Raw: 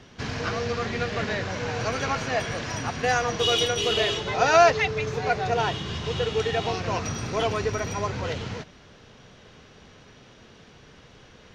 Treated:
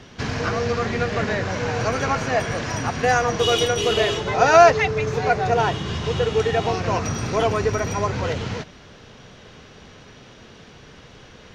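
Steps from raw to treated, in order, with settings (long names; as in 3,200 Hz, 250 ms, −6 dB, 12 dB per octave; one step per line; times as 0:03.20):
dynamic equaliser 3,600 Hz, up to −6 dB, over −40 dBFS, Q 0.93
level +5.5 dB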